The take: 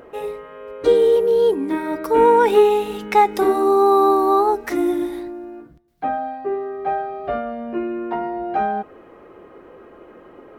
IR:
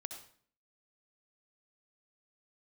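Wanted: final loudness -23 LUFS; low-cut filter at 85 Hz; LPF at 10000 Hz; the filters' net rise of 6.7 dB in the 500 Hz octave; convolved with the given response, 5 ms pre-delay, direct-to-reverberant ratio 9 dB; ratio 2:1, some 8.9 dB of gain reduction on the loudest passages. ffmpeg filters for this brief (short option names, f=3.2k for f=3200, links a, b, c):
-filter_complex "[0:a]highpass=85,lowpass=10k,equalizer=f=500:t=o:g=8,acompressor=threshold=-20dB:ratio=2,asplit=2[a][b];[1:a]atrim=start_sample=2205,adelay=5[c];[b][c]afir=irnorm=-1:irlink=0,volume=-6.5dB[d];[a][d]amix=inputs=2:normalize=0,volume=-3.5dB"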